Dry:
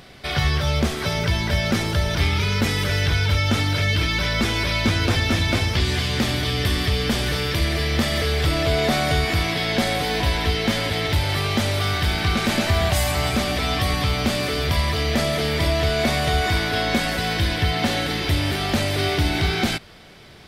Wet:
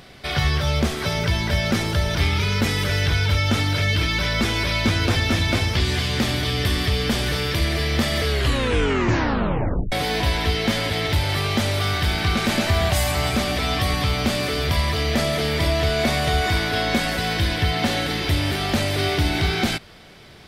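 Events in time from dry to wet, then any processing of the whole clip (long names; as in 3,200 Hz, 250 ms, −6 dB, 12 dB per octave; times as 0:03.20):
0:08.28: tape stop 1.64 s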